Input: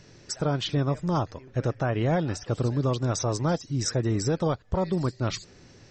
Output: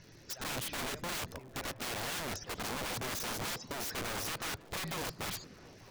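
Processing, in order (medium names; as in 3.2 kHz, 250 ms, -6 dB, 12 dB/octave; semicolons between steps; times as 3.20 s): coarse spectral quantiser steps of 15 dB; elliptic low-pass 6.8 kHz; integer overflow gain 29.5 dB; on a send: repeats whose band climbs or falls 223 ms, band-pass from 190 Hz, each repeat 0.7 oct, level -10 dB; on the sum: crackle 150 per s -45 dBFS; trim -3.5 dB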